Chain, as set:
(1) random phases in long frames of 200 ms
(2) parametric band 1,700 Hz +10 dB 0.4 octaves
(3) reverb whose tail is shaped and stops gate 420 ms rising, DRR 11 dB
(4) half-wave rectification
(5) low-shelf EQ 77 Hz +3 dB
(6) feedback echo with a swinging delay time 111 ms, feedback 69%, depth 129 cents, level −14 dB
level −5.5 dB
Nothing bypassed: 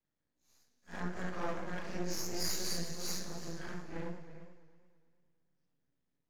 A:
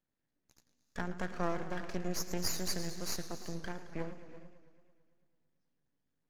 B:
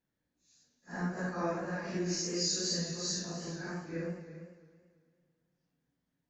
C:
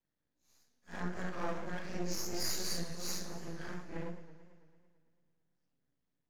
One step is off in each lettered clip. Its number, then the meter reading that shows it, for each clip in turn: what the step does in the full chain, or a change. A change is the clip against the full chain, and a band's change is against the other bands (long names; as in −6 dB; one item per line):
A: 1, 4 kHz band −2.5 dB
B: 4, 1 kHz band −2.5 dB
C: 3, change in momentary loudness spread −4 LU